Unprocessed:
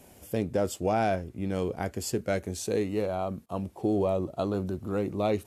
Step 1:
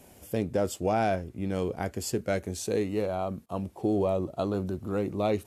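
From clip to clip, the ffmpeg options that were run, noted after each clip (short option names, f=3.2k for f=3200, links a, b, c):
-af anull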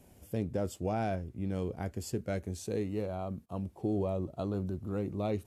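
-af "lowshelf=f=240:g=9.5,volume=-9dB"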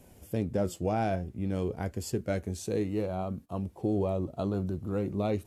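-af "flanger=delay=1.9:depth=4.4:regen=83:speed=0.52:shape=sinusoidal,volume=8dB"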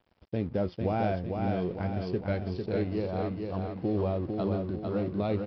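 -af "aresample=11025,aeval=exprs='sgn(val(0))*max(abs(val(0))-0.00251,0)':c=same,aresample=44100,aecho=1:1:450|900|1350|1800|2250|2700:0.596|0.292|0.143|0.0701|0.0343|0.0168"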